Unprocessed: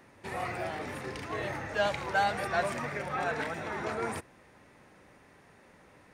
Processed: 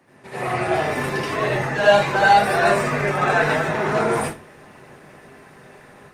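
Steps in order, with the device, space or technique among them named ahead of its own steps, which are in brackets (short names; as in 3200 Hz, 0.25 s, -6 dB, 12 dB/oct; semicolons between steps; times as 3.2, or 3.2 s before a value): far-field microphone of a smart speaker (reverb RT60 0.35 s, pre-delay 74 ms, DRR -7 dB; HPF 100 Hz 24 dB/oct; AGC gain up to 7 dB; Opus 20 kbps 48000 Hz)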